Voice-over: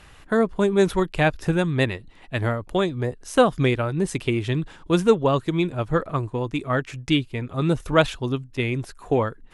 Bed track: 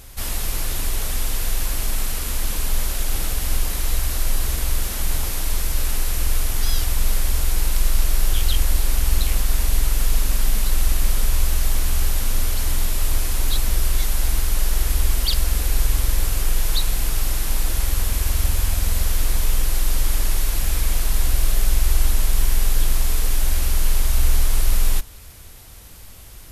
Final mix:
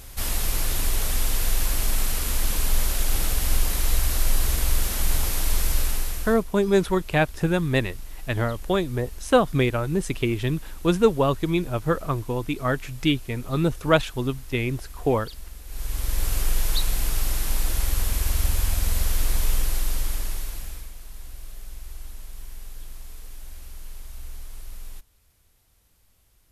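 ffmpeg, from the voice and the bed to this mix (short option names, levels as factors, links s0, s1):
-filter_complex "[0:a]adelay=5950,volume=0.891[s0];[1:a]volume=7.08,afade=t=out:st=5.72:d=0.72:silence=0.1,afade=t=in:st=15.66:d=0.68:silence=0.133352,afade=t=out:st=19.51:d=1.41:silence=0.125893[s1];[s0][s1]amix=inputs=2:normalize=0"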